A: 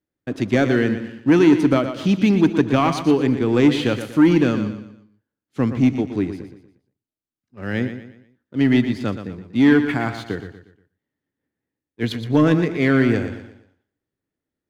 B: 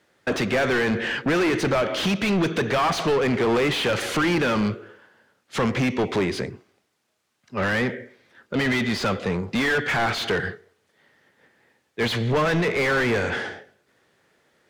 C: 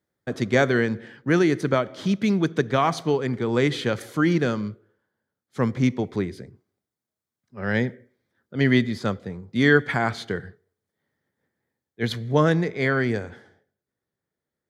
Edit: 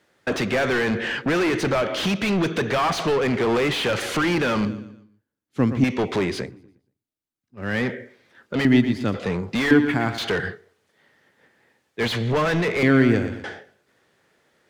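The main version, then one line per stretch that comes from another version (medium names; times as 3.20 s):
B
4.65–5.84 s: from A
6.50–7.75 s: from A, crossfade 0.24 s
8.65–9.14 s: from A
9.71–10.18 s: from A
12.83–13.44 s: from A
not used: C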